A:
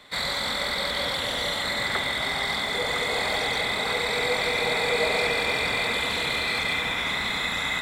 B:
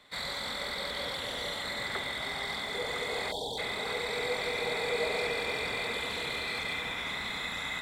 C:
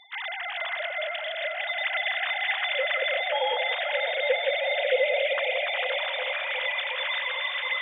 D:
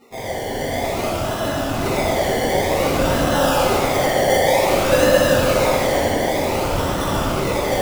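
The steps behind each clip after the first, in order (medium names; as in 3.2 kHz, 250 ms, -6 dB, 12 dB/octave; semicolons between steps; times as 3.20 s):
spectral selection erased 3.32–3.58 s, 1–3.1 kHz; dynamic bell 420 Hz, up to +5 dB, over -41 dBFS, Q 3; trim -8.5 dB
formants replaced by sine waves; echo whose repeats swap between lows and highs 181 ms, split 1.2 kHz, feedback 88%, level -8.5 dB; trim +5.5 dB
decimation with a swept rate 27×, swing 60% 0.54 Hz; plate-style reverb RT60 2.4 s, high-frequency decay 0.75×, DRR -8.5 dB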